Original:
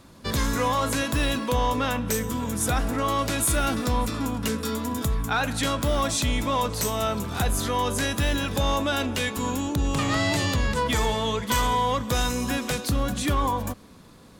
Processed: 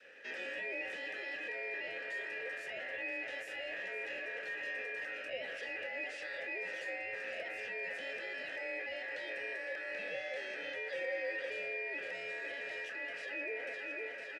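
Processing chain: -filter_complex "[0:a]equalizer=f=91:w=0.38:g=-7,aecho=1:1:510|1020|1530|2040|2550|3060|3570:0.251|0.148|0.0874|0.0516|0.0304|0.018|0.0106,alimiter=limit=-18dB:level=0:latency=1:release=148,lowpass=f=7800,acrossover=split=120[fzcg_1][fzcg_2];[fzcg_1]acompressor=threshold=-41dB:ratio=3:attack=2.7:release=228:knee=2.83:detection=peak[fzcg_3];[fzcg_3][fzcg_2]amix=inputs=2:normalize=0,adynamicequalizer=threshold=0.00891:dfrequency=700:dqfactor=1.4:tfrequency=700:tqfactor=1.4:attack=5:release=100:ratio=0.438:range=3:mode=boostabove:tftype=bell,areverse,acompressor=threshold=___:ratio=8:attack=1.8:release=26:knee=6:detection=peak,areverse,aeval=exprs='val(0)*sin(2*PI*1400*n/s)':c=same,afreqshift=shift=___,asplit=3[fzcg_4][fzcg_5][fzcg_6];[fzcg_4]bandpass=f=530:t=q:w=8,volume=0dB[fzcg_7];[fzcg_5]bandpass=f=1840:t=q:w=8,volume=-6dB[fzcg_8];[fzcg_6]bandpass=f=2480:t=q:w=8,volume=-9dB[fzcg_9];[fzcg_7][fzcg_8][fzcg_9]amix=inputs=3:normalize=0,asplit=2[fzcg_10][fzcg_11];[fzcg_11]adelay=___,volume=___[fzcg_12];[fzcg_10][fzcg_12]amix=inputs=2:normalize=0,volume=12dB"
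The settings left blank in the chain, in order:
-37dB, 17, 27, -11.5dB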